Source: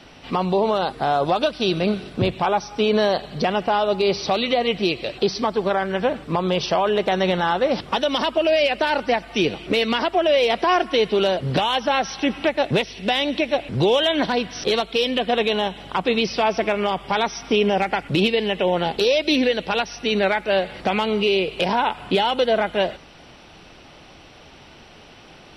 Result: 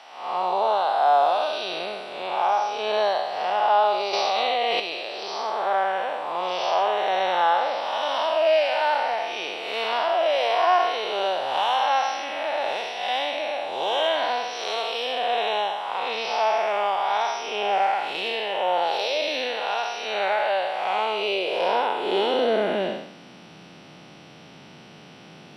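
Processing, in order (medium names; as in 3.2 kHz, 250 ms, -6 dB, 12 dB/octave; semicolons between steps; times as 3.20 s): spectral blur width 232 ms; high-pass sweep 770 Hz -> 160 Hz, 21.07–23.54 s; 4.13–4.80 s: level flattener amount 100%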